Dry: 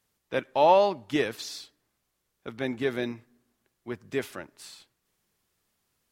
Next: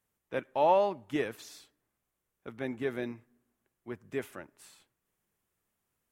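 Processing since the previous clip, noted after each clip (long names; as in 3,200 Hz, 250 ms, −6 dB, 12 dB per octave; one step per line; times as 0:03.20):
parametric band 4,500 Hz −9.5 dB 0.95 octaves
level −5 dB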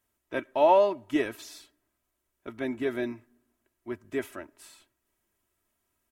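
comb filter 3.1 ms, depth 64%
level +2.5 dB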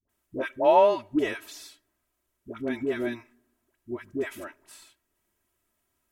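all-pass dispersion highs, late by 93 ms, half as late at 630 Hz
level +1.5 dB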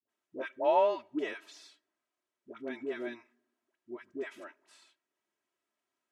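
band-pass filter 290–5,900 Hz
level −7 dB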